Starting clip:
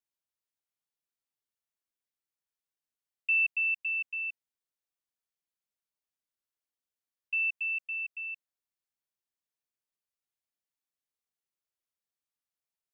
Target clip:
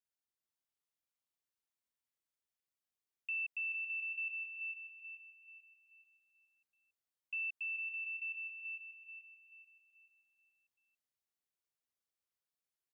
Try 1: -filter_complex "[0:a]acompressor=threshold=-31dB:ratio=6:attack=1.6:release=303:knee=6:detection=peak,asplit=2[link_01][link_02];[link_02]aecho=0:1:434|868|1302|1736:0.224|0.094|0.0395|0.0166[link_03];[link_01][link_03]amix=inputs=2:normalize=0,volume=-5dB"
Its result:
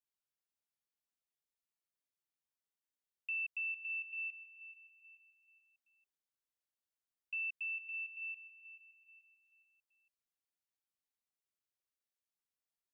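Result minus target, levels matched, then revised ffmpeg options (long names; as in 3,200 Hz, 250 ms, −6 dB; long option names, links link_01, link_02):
echo-to-direct −11 dB
-filter_complex "[0:a]acompressor=threshold=-31dB:ratio=6:attack=1.6:release=303:knee=6:detection=peak,asplit=2[link_01][link_02];[link_02]aecho=0:1:434|868|1302|1736|2170|2604:0.794|0.334|0.14|0.0589|0.0247|0.0104[link_03];[link_01][link_03]amix=inputs=2:normalize=0,volume=-5dB"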